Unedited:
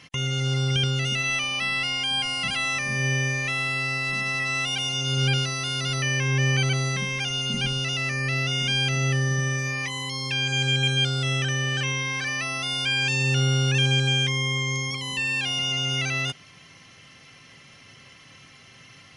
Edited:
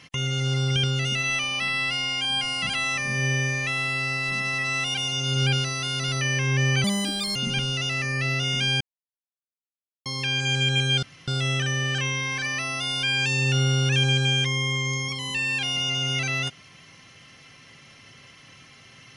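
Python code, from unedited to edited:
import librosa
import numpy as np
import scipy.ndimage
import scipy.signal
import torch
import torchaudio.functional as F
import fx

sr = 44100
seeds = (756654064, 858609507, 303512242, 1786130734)

y = fx.edit(x, sr, fx.stretch_span(start_s=1.68, length_s=0.38, factor=1.5),
    fx.speed_span(start_s=6.65, length_s=0.78, speed=1.51),
    fx.silence(start_s=8.88, length_s=1.25),
    fx.insert_room_tone(at_s=11.1, length_s=0.25), tone=tone)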